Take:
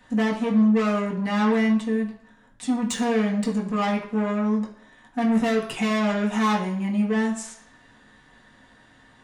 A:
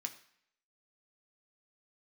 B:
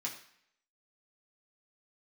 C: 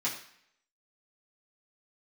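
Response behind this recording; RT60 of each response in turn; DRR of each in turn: B; 0.65 s, 0.65 s, 0.65 s; 4.0 dB, -3.5 dB, -8.0 dB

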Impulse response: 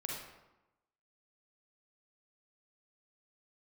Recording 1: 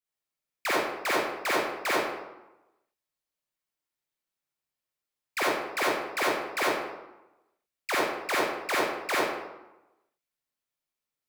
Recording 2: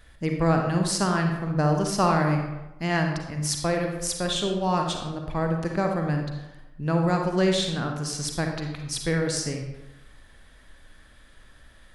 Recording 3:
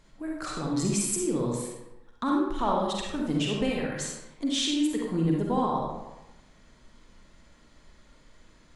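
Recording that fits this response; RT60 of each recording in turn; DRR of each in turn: 3; 1.0 s, 1.0 s, 1.0 s; -7.5 dB, 2.5 dB, -2.5 dB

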